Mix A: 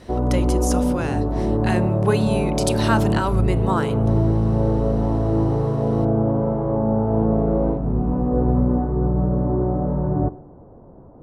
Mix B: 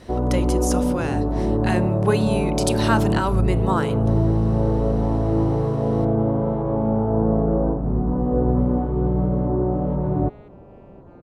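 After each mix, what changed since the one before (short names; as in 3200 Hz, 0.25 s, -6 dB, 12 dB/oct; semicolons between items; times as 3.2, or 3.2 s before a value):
first sound: send off; second sound: entry +2.70 s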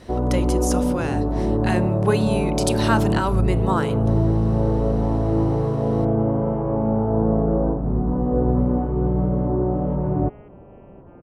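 second sound: add brick-wall FIR low-pass 3300 Hz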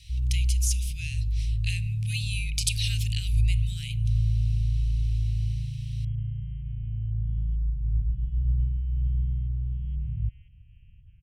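speech: add bell 2400 Hz +13.5 dB 0.57 oct; second sound +6.5 dB; master: add inverse Chebyshev band-stop 280–1200 Hz, stop band 60 dB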